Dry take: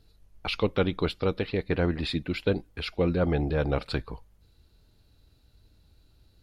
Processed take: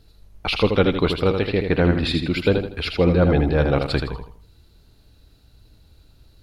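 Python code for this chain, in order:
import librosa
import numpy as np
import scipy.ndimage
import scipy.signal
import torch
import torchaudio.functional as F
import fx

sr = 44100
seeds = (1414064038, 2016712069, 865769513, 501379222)

y = fx.echo_feedback(x, sr, ms=80, feedback_pct=34, wet_db=-6)
y = F.gain(torch.from_numpy(y), 7.0).numpy()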